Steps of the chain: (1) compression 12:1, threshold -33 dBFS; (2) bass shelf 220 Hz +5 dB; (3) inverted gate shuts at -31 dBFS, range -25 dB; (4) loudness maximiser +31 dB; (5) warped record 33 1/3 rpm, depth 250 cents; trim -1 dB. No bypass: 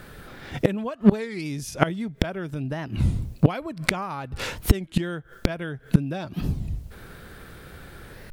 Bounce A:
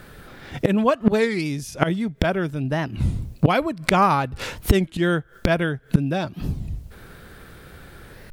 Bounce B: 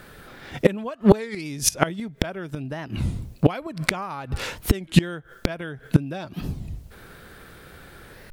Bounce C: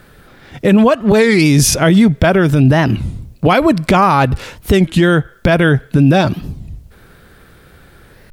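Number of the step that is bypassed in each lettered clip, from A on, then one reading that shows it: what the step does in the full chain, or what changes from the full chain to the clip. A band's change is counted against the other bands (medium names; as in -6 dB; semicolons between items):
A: 1, mean gain reduction 6.5 dB; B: 2, 8 kHz band +9.0 dB; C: 3, momentary loudness spread change -12 LU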